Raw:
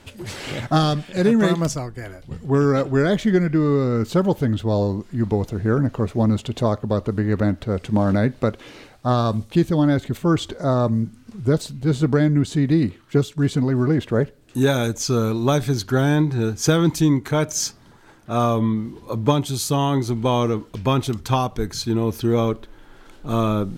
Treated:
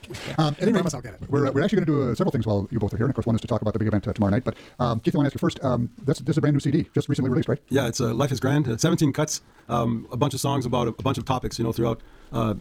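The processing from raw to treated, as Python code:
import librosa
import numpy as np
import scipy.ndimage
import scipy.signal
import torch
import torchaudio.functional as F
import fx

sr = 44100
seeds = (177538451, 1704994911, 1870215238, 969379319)

y = fx.stretch_grains(x, sr, factor=0.53, grain_ms=44.0)
y = fx.dmg_crackle(y, sr, seeds[0], per_s=83.0, level_db=-48.0)
y = F.gain(torch.from_numpy(y), -2.0).numpy()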